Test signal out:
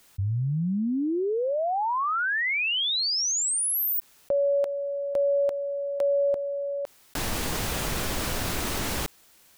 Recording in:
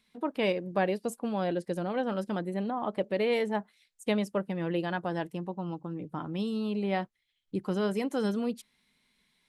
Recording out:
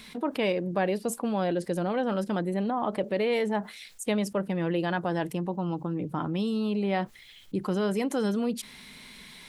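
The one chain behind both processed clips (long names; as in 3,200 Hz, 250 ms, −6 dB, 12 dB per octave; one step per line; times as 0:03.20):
envelope flattener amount 50%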